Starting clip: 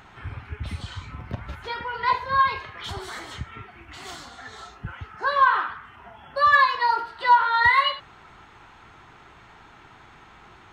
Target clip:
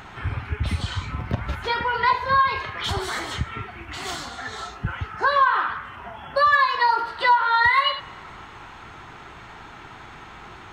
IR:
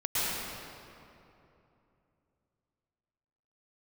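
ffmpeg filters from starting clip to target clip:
-filter_complex "[0:a]acompressor=threshold=0.0562:ratio=3,asplit=2[s0][s1];[1:a]atrim=start_sample=2205[s2];[s1][s2]afir=irnorm=-1:irlink=0,volume=0.0211[s3];[s0][s3]amix=inputs=2:normalize=0,volume=2.37"

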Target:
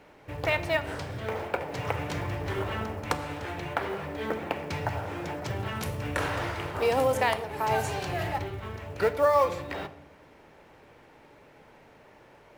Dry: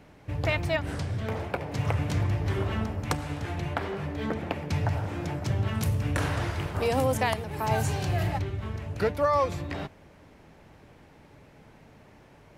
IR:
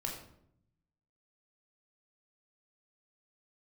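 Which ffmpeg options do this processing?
-filter_complex "[0:a]bass=f=250:g=-11,treble=f=4000:g=-5,acrusher=bits=7:mode=log:mix=0:aa=0.000001,asplit=2[s0][s1];[1:a]atrim=start_sample=2205[s2];[s1][s2]afir=irnorm=-1:irlink=0,volume=0.376[s3];[s0][s3]amix=inputs=2:normalize=0"

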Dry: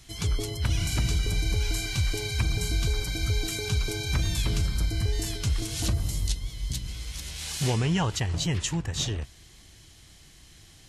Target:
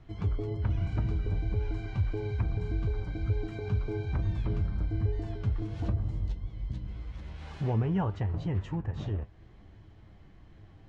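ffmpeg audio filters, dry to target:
-filter_complex "[0:a]lowpass=1100,asplit=2[s0][s1];[s1]acompressor=threshold=0.01:ratio=6,volume=1.06[s2];[s0][s2]amix=inputs=2:normalize=0,flanger=delay=9.2:depth=1.2:regen=62:speed=1.8:shape=triangular"

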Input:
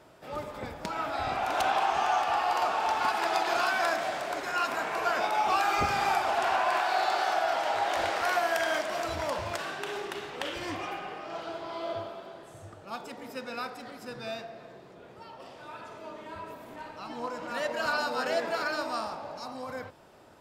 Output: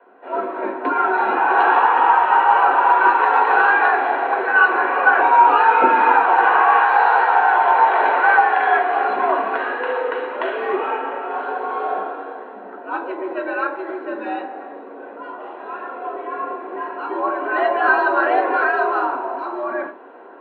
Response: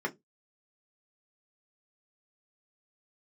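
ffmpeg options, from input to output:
-filter_complex "[0:a]dynaudnorm=f=170:g=3:m=2.82[s0];[1:a]atrim=start_sample=2205,asetrate=32634,aresample=44100[s1];[s0][s1]afir=irnorm=-1:irlink=0,highpass=f=150:t=q:w=0.5412,highpass=f=150:t=q:w=1.307,lowpass=f=3200:t=q:w=0.5176,lowpass=f=3200:t=q:w=0.7071,lowpass=f=3200:t=q:w=1.932,afreqshift=94,volume=0.596"

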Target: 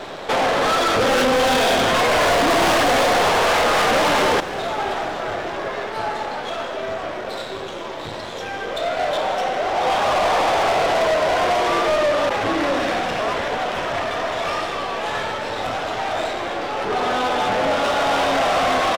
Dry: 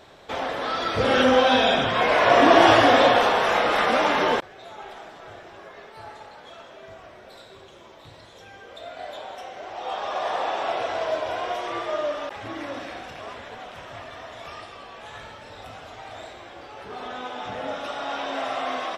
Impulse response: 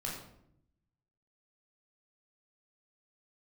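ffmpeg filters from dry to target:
-filter_complex "[0:a]aeval=exprs='if(lt(val(0),0),0.251*val(0),val(0))':c=same,tiltshelf=f=720:g=5.5,asplit=2[s0][s1];[s1]acompressor=threshold=0.0398:ratio=6,volume=1.26[s2];[s0][s2]amix=inputs=2:normalize=0,asplit=2[s3][s4];[s4]highpass=f=720:p=1,volume=10,asoftclip=type=tanh:threshold=0.841[s5];[s3][s5]amix=inputs=2:normalize=0,lowpass=f=7200:p=1,volume=0.501,asoftclip=type=tanh:threshold=0.119,asplit=7[s6][s7][s8][s9][s10][s11][s12];[s7]adelay=269,afreqshift=-87,volume=0.168[s13];[s8]adelay=538,afreqshift=-174,volume=0.102[s14];[s9]adelay=807,afreqshift=-261,volume=0.0624[s15];[s10]adelay=1076,afreqshift=-348,volume=0.038[s16];[s11]adelay=1345,afreqshift=-435,volume=0.0232[s17];[s12]adelay=1614,afreqshift=-522,volume=0.0141[s18];[s6][s13][s14][s15][s16][s17][s18]amix=inputs=7:normalize=0,volume=1.41"

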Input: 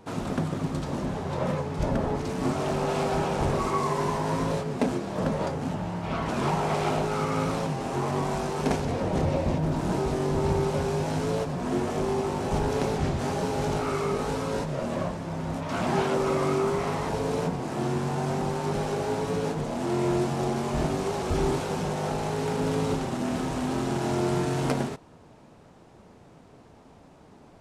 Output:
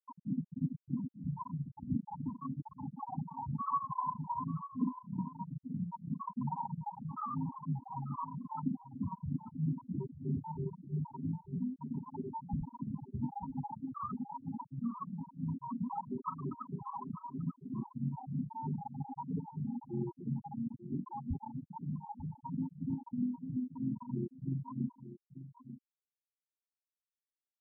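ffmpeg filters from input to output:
-filter_complex "[0:a]acrossover=split=710[s0][s1];[s1]acontrast=72[s2];[s0][s2]amix=inputs=2:normalize=0,equalizer=f=125:t=o:w=1:g=5,equalizer=f=250:t=o:w=1:g=9,equalizer=f=500:t=o:w=1:g=-8,equalizer=f=1000:t=o:w=1:g=9,equalizer=f=4000:t=o:w=1:g=-11,equalizer=f=8000:t=o:w=1:g=7,acompressor=threshold=0.0447:ratio=3,acrossover=split=660[s3][s4];[s3]aeval=exprs='val(0)*(1-0.7/2+0.7/2*cos(2*PI*3.1*n/s))':c=same[s5];[s4]aeval=exprs='val(0)*(1-0.7/2-0.7/2*cos(2*PI*3.1*n/s))':c=same[s6];[s5][s6]amix=inputs=2:normalize=0,afftfilt=real='re*gte(hypot(re,im),0.178)':imag='im*gte(hypot(re,im),0.178)':win_size=1024:overlap=0.75,asplit=2[s7][s8];[s8]aecho=0:1:890:0.224[s9];[s7][s9]amix=inputs=2:normalize=0,volume=0.708"

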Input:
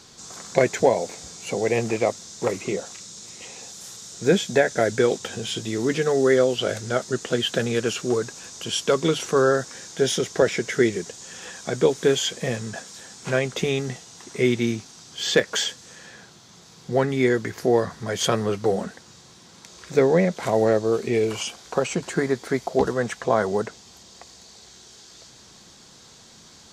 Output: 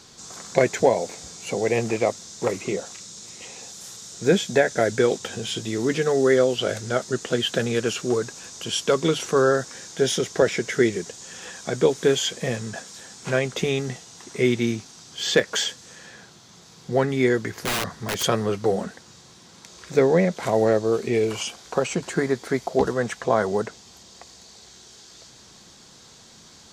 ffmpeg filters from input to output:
-filter_complex "[0:a]asplit=3[s0][s1][s2];[s0]afade=t=out:st=17.5:d=0.02[s3];[s1]aeval=exprs='(mod(9.44*val(0)+1,2)-1)/9.44':c=same,afade=t=in:st=17.5:d=0.02,afade=t=out:st=18.22:d=0.02[s4];[s2]afade=t=in:st=18.22:d=0.02[s5];[s3][s4][s5]amix=inputs=3:normalize=0"

